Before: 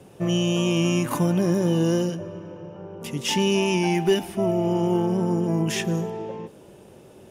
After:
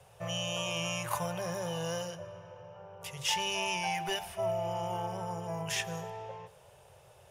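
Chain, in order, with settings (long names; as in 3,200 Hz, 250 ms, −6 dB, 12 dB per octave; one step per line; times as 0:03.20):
Chebyshev band-stop filter 110–640 Hz, order 2
mains-hum notches 50/100/150/200/250/300/350 Hz
on a send: convolution reverb RT60 2.2 s, pre-delay 103 ms, DRR 21 dB
on the sum: level −4 dB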